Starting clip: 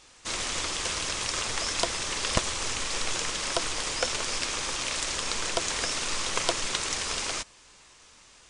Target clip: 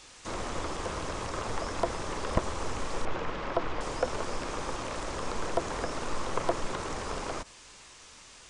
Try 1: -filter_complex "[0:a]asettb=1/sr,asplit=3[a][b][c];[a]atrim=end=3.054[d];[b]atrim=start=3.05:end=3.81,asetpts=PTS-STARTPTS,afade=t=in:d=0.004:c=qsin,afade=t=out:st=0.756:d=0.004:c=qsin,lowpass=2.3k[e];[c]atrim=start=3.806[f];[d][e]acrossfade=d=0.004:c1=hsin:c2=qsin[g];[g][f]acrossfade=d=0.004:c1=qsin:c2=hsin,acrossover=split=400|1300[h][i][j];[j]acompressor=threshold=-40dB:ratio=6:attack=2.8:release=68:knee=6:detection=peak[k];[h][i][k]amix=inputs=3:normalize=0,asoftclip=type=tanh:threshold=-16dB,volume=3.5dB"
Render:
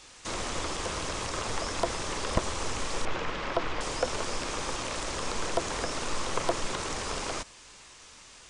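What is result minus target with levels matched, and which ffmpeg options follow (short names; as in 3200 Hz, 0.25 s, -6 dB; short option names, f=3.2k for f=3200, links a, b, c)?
compressor: peak gain reduction -7 dB
-filter_complex "[0:a]asettb=1/sr,asplit=3[a][b][c];[a]atrim=end=3.054[d];[b]atrim=start=3.05:end=3.81,asetpts=PTS-STARTPTS,afade=t=in:d=0.004:c=qsin,afade=t=out:st=0.756:d=0.004:c=qsin,lowpass=2.3k[e];[c]atrim=start=3.806[f];[d][e]acrossfade=d=0.004:c1=hsin:c2=qsin[g];[g][f]acrossfade=d=0.004:c1=qsin:c2=hsin,acrossover=split=400|1300[h][i][j];[j]acompressor=threshold=-48.5dB:ratio=6:attack=2.8:release=68:knee=6:detection=peak[k];[h][i][k]amix=inputs=3:normalize=0,asoftclip=type=tanh:threshold=-16dB,volume=3.5dB"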